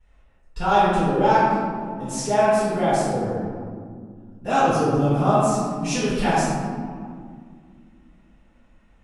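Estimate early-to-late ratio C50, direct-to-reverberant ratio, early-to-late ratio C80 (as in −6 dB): −3.0 dB, −16.0 dB, −0.5 dB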